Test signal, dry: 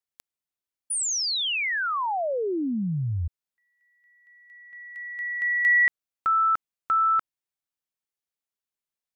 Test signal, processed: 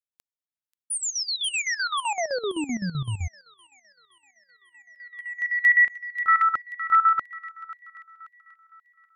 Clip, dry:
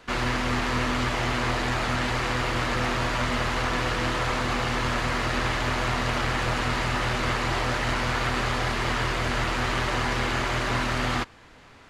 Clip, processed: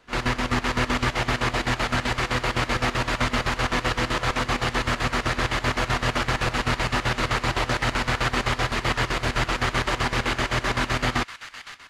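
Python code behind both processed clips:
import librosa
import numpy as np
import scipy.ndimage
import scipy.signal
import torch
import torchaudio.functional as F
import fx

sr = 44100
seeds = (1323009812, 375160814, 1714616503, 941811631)

y = fx.echo_wet_highpass(x, sr, ms=535, feedback_pct=57, hz=1600.0, wet_db=-6)
y = fx.chopper(y, sr, hz=7.8, depth_pct=65, duty_pct=60)
y = fx.upward_expand(y, sr, threshold_db=-46.0, expansion=1.5)
y = F.gain(torch.from_numpy(y), 4.0).numpy()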